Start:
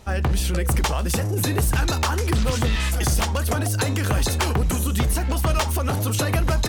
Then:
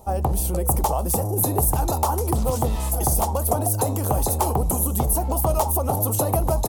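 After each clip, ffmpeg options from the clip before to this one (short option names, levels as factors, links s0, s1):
-af "firequalizer=gain_entry='entry(230,0);entry(810,10);entry(1600,-16);entry(11000,11)':delay=0.05:min_phase=1,volume=0.794"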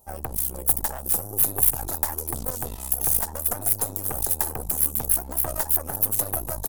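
-af "aeval=exprs='0.531*(cos(1*acos(clip(val(0)/0.531,-1,1)))-cos(1*PI/2))+0.266*(cos(2*acos(clip(val(0)/0.531,-1,1)))-cos(2*PI/2))+0.0473*(cos(6*acos(clip(val(0)/0.531,-1,1)))-cos(6*PI/2))+0.0237*(cos(7*acos(clip(val(0)/0.531,-1,1)))-cos(7*PI/2))':c=same,aemphasis=mode=production:type=50fm,volume=0.266"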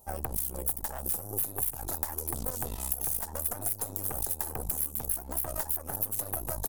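-af "acompressor=threshold=0.0398:ratio=5"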